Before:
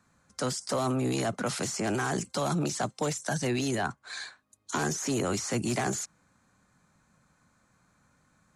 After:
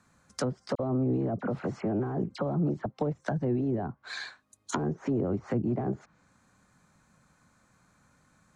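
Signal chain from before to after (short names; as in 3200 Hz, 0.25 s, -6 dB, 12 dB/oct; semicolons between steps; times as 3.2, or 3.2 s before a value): treble ducked by the level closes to 520 Hz, closed at -26.5 dBFS; 0.75–2.86 dispersion lows, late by 45 ms, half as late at 2500 Hz; gain +2 dB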